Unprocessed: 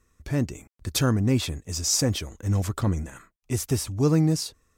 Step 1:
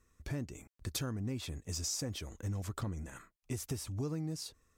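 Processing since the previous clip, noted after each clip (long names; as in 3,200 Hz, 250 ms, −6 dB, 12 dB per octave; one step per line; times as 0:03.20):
downward compressor 6 to 1, threshold −30 dBFS, peak gain reduction 13.5 dB
level −5 dB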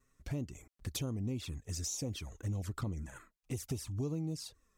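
pitch vibrato 2.9 Hz 37 cents
flanger swept by the level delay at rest 7.8 ms, full sweep at −33.5 dBFS
level +1 dB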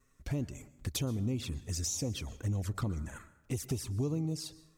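dense smooth reverb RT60 0.92 s, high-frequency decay 0.55×, pre-delay 110 ms, DRR 17.5 dB
level +3.5 dB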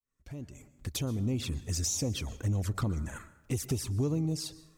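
fade in at the beginning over 1.42 s
in parallel at −9 dB: soft clipping −33 dBFS, distortion −12 dB
on the sum: level +1.5 dB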